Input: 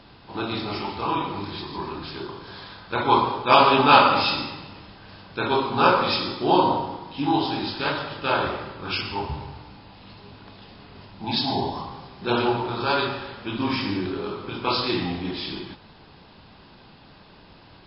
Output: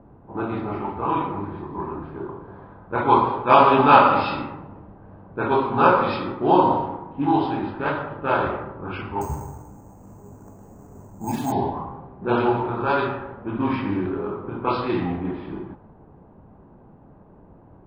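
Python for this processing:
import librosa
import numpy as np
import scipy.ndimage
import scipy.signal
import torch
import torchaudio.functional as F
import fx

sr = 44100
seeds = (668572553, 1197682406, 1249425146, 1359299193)

y = fx.env_lowpass(x, sr, base_hz=670.0, full_db=-15.5)
y = scipy.signal.sosfilt(scipy.signal.butter(2, 1800.0, 'lowpass', fs=sr, output='sos'), y)
y = fx.resample_bad(y, sr, factor=6, down='filtered', up='hold', at=(9.21, 11.52))
y = y * 10.0 ** (2.5 / 20.0)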